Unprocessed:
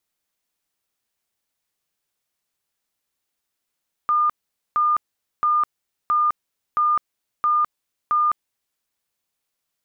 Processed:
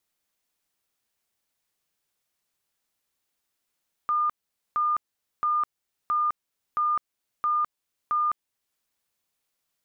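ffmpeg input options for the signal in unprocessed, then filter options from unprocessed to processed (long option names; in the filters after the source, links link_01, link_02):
-f lavfi -i "aevalsrc='0.168*sin(2*PI*1210*mod(t,0.67))*lt(mod(t,0.67),250/1210)':duration=4.69:sample_rate=44100"
-af "alimiter=limit=-21dB:level=0:latency=1:release=460"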